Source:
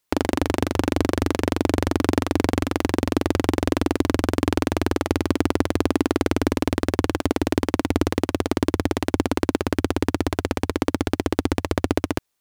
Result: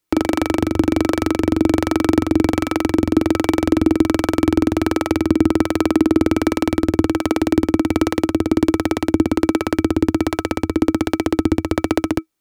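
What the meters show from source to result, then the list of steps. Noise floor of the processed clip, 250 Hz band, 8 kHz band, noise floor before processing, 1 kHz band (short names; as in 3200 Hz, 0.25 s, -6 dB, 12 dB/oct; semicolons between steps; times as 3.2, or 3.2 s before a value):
-41 dBFS, +6.5 dB, +1.5 dB, -56 dBFS, +2.0 dB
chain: harmonic tremolo 1.3 Hz, depth 50%, crossover 420 Hz; small resonant body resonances 320/1300/2300 Hz, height 11 dB, ringing for 90 ms; gain +3.5 dB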